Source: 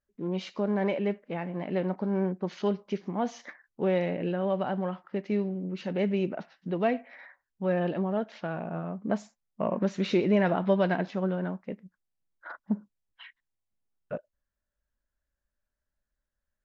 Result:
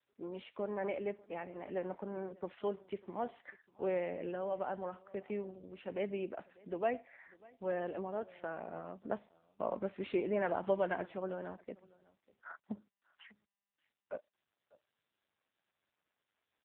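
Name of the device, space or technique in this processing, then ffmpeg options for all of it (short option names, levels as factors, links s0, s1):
satellite phone: -af "highpass=340,lowpass=3300,aecho=1:1:596:0.0668,volume=0.531" -ar 8000 -c:a libopencore_amrnb -b:a 6700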